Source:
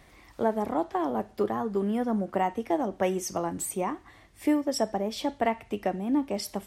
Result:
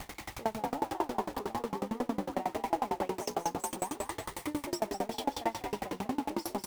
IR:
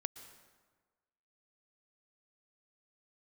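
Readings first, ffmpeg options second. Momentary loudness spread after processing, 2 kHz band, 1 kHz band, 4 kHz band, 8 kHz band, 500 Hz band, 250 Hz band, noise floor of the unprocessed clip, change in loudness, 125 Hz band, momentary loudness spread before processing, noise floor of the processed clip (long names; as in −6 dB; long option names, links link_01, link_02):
4 LU, −4.0 dB, −3.0 dB, −3.0 dB, −4.5 dB, −7.5 dB, −8.5 dB, −56 dBFS, −6.5 dB, −7.0 dB, 5 LU, −53 dBFS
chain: -filter_complex "[0:a]aeval=exprs='val(0)+0.5*0.0422*sgn(val(0))':channel_layout=same,equalizer=frequency=830:width=8:gain=10.5,asplit=9[link_01][link_02][link_03][link_04][link_05][link_06][link_07][link_08][link_09];[link_02]adelay=197,afreqshift=51,volume=-3dB[link_10];[link_03]adelay=394,afreqshift=102,volume=-7.7dB[link_11];[link_04]adelay=591,afreqshift=153,volume=-12.5dB[link_12];[link_05]adelay=788,afreqshift=204,volume=-17.2dB[link_13];[link_06]adelay=985,afreqshift=255,volume=-21.9dB[link_14];[link_07]adelay=1182,afreqshift=306,volume=-26.7dB[link_15];[link_08]adelay=1379,afreqshift=357,volume=-31.4dB[link_16];[link_09]adelay=1576,afreqshift=408,volume=-36.1dB[link_17];[link_01][link_10][link_11][link_12][link_13][link_14][link_15][link_16][link_17]amix=inputs=9:normalize=0,aeval=exprs='val(0)*pow(10,-27*if(lt(mod(11*n/s,1),2*abs(11)/1000),1-mod(11*n/s,1)/(2*abs(11)/1000),(mod(11*n/s,1)-2*abs(11)/1000)/(1-2*abs(11)/1000))/20)':channel_layout=same,volume=-5.5dB"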